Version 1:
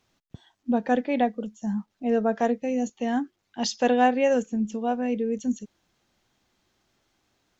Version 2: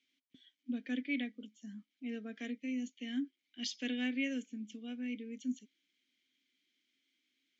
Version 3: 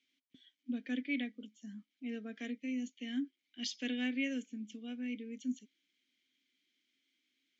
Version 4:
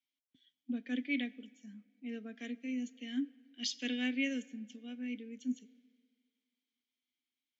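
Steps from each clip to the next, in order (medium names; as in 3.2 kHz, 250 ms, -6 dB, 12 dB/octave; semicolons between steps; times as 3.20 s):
vowel filter i; tilt EQ +4 dB/octave; trim +1.5 dB
no audible change
on a send at -20.5 dB: reverberation RT60 3.1 s, pre-delay 20 ms; on the sum: three bands expanded up and down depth 40%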